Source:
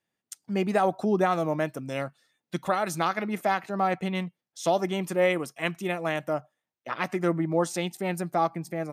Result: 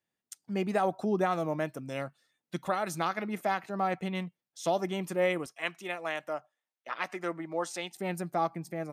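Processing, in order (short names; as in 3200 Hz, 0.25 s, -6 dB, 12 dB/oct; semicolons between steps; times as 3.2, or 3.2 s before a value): 5.46–7.96 weighting filter A; gain -4.5 dB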